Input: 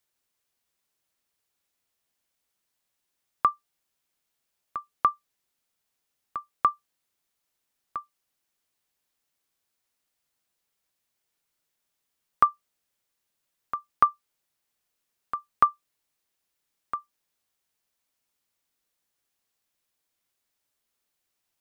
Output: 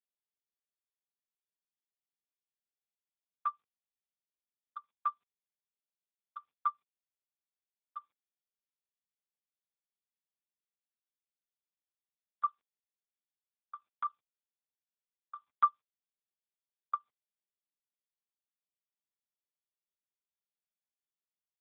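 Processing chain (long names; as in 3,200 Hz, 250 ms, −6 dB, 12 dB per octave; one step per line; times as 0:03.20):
adaptive Wiener filter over 25 samples
noise gate with hold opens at −50 dBFS
Chebyshev high-pass filter 770 Hz, order 4
0:12.45–0:15.36: output level in coarse steps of 14 dB
AMR narrowband 4.75 kbit/s 8,000 Hz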